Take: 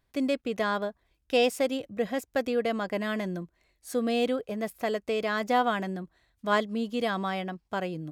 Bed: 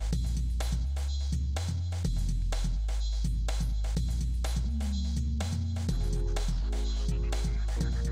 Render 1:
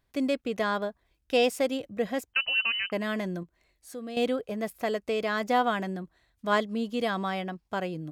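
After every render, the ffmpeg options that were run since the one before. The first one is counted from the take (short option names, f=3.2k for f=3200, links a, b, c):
-filter_complex "[0:a]asettb=1/sr,asplit=3[a][b][c];[a]atrim=end=2.334[d];[b]atrim=start=2.33:end=2.92,asetpts=PTS-STARTPTS,afade=t=in:d=0.004:c=qsin,afade=t=out:st=0.586:d=0.004:c=qsin,lowpass=f=2.7k:t=q:w=0.5098,lowpass=f=2.7k:t=q:w=0.6013,lowpass=f=2.7k:t=q:w=0.9,lowpass=f=2.7k:t=q:w=2.563,afreqshift=-3200[e];[c]atrim=start=2.916[f];[d][e]acrossfade=d=0.004:c1=hsin:c2=qsin[g];[g][f]acrossfade=d=0.004:c1=qsin:c2=hsin,asettb=1/sr,asplit=3[h][i][j];[h]atrim=end=3.434[k];[i]atrim=start=3.43:end=4.17,asetpts=PTS-STARTPTS,afade=t=in:d=0.004:c=qsin,afade=t=out:st=0.736:d=0.004:c=qsin,acompressor=threshold=-54dB:ratio=1.5:attack=3.2:release=140:knee=1:detection=peak[l];[j]atrim=start=4.166[m];[k][l]acrossfade=d=0.004:c1=hsin:c2=qsin[n];[n][m]acrossfade=d=0.004:c1=qsin:c2=hsin"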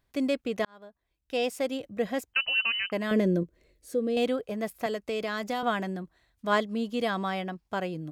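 -filter_complex "[0:a]asettb=1/sr,asplit=3[a][b][c];[a]atrim=end=3.114[d];[b]atrim=start=3.11:end=4.17,asetpts=PTS-STARTPTS,afade=t=in:d=0.004:c=qsin,afade=t=out:st=1.056:d=0.004:c=qsin,lowshelf=f=630:t=q:w=3:g=7[e];[c]atrim=start=4.166[f];[d][e]acrossfade=d=0.004:c1=hsin:c2=qsin[g];[g][f]acrossfade=d=0.004:c1=qsin:c2=hsin,asettb=1/sr,asplit=3[h][i][j];[h]atrim=end=4.864[k];[i]atrim=start=4.86:end=5.63,asetpts=PTS-STARTPTS,afade=t=in:d=0.004:c=qsin,afade=t=out:st=0.766:d=0.004:c=qsin,acrossover=split=160|3000[l][m][n];[m]acompressor=threshold=-27dB:ratio=6:attack=3.2:release=140:knee=2.83:detection=peak[o];[l][o][n]amix=inputs=3:normalize=0[p];[j]atrim=start=5.626[q];[k][p]acrossfade=d=0.004:c1=hsin:c2=qsin[r];[r][q]acrossfade=d=0.004:c1=qsin:c2=hsin,asplit=2[s][t];[s]atrim=end=0.65,asetpts=PTS-STARTPTS,afade=t=out:st=0.646:d=0.004:c=hsin[u];[t]atrim=start=0.65,asetpts=PTS-STARTPTS,afade=t=in:d=1.36[v];[u][v]concat=n=2:v=0:a=1"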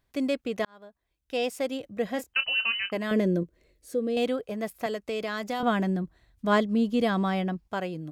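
-filter_complex "[0:a]asettb=1/sr,asplit=3[a][b][c];[a]atrim=end=2.114[d];[b]atrim=start=2.11:end=2.97,asetpts=PTS-STARTPTS,afade=t=in:d=0.004:c=qsin,afade=t=out:st=0.856:d=0.004:c=qsin,asplit=2[e][f];[f]adelay=27,volume=-11dB[g];[e][g]amix=inputs=2:normalize=0,atrim=end_sample=37926[h];[c]atrim=start=2.966[i];[d][h]acrossfade=d=0.004:c1=hsin:c2=qsin[j];[j][i]acrossfade=d=0.004:c1=qsin:c2=hsin,asettb=1/sr,asplit=3[k][l][m];[k]atrim=end=5.604[n];[l]atrim=start=5.6:end=7.68,asetpts=PTS-STARTPTS,afade=t=in:d=0.004:c=qsin,afade=t=out:st=2.076:d=0.004:c=qsin,lowshelf=f=310:g=10.5[o];[m]atrim=start=7.676[p];[n][o]acrossfade=d=0.004:c1=hsin:c2=qsin[q];[q][p]acrossfade=d=0.004:c1=qsin:c2=hsin"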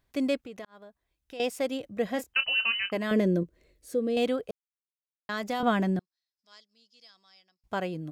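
-filter_complex "[0:a]asettb=1/sr,asplit=3[a][b][c];[a]atrim=end=0.404[d];[b]atrim=start=0.4:end=1.4,asetpts=PTS-STARTPTS,afade=t=in:d=0.004:c=qsin,afade=t=out:st=0.996:d=0.004:c=qsin,acompressor=threshold=-44dB:ratio=2.5:attack=3.2:release=140:knee=1:detection=peak[e];[c]atrim=start=1.396[f];[d][e]acrossfade=d=0.004:c1=hsin:c2=qsin[g];[g][f]acrossfade=d=0.004:c1=qsin:c2=hsin,asettb=1/sr,asplit=3[h][i][j];[h]atrim=end=5.994[k];[i]atrim=start=5.99:end=7.64,asetpts=PTS-STARTPTS,afade=t=in:d=0.004:c=qsin,afade=t=out:st=1.646:d=0.004:c=qsin,bandpass=f=5.1k:t=q:w=11[l];[j]atrim=start=7.636[m];[k][l]acrossfade=d=0.004:c1=hsin:c2=qsin[n];[n][m]acrossfade=d=0.004:c1=qsin:c2=hsin,asplit=3[o][p][q];[o]atrim=end=4.51,asetpts=PTS-STARTPTS,afade=t=out:st=4.506:d=0.004:c=hsin[r];[p]atrim=start=4.51:end=5.29,asetpts=PTS-STARTPTS,volume=0[s];[q]atrim=start=5.29,asetpts=PTS-STARTPTS,afade=t=in:d=0.004:c=hsin[t];[r][s][t]concat=n=3:v=0:a=1"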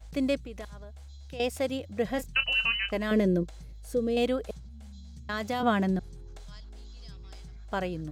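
-filter_complex "[1:a]volume=-15.5dB[a];[0:a][a]amix=inputs=2:normalize=0"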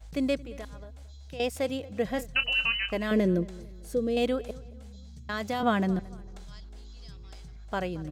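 -filter_complex "[0:a]asplit=2[a][b];[b]adelay=225,lowpass=f=2.6k:p=1,volume=-20dB,asplit=2[c][d];[d]adelay=225,lowpass=f=2.6k:p=1,volume=0.39,asplit=2[e][f];[f]adelay=225,lowpass=f=2.6k:p=1,volume=0.39[g];[a][c][e][g]amix=inputs=4:normalize=0"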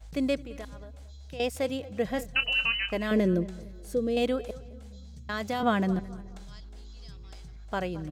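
-filter_complex "[0:a]asplit=2[a][b];[b]adelay=215,lowpass=f=2.2k:p=1,volume=-21dB,asplit=2[c][d];[d]adelay=215,lowpass=f=2.2k:p=1,volume=0.44,asplit=2[e][f];[f]adelay=215,lowpass=f=2.2k:p=1,volume=0.44[g];[a][c][e][g]amix=inputs=4:normalize=0"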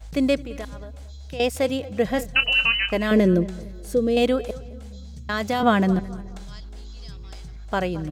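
-af "volume=7dB"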